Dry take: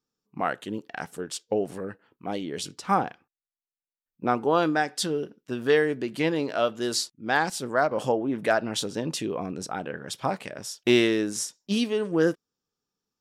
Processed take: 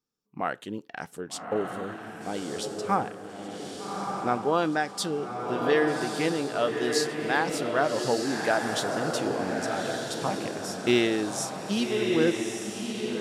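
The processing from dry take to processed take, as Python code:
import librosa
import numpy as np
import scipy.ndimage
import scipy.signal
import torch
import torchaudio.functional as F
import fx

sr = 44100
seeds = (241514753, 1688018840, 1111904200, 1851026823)

y = fx.echo_diffused(x, sr, ms=1211, feedback_pct=40, wet_db=-3.0)
y = y * librosa.db_to_amplitude(-2.5)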